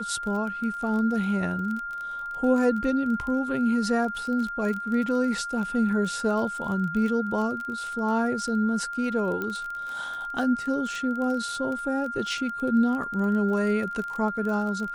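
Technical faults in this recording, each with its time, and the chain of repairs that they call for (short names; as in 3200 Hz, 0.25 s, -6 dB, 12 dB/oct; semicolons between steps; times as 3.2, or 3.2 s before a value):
crackle 23/s -31 dBFS
tone 1400 Hz -31 dBFS
9.42 pop -18 dBFS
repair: de-click; notch 1400 Hz, Q 30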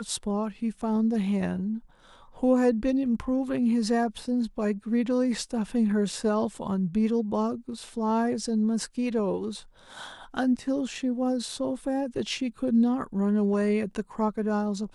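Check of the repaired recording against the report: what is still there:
9.42 pop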